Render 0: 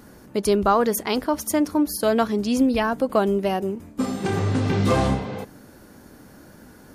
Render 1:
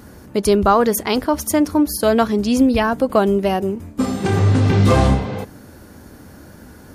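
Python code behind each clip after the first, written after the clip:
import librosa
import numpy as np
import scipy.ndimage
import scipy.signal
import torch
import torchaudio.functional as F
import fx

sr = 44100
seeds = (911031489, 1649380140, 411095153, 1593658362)

y = fx.peak_eq(x, sr, hz=77.0, db=8.5, octaves=0.92)
y = F.gain(torch.from_numpy(y), 4.5).numpy()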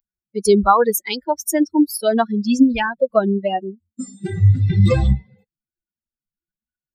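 y = fx.bin_expand(x, sr, power=3.0)
y = F.gain(torch.from_numpy(y), 4.5).numpy()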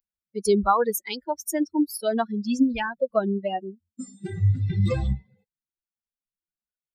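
y = fx.rider(x, sr, range_db=3, speed_s=2.0)
y = F.gain(torch.from_numpy(y), -8.0).numpy()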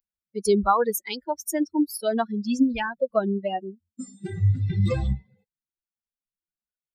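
y = x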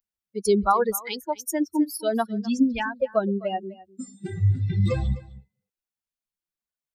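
y = x + 10.0 ** (-19.5 / 20.0) * np.pad(x, (int(256 * sr / 1000.0), 0))[:len(x)]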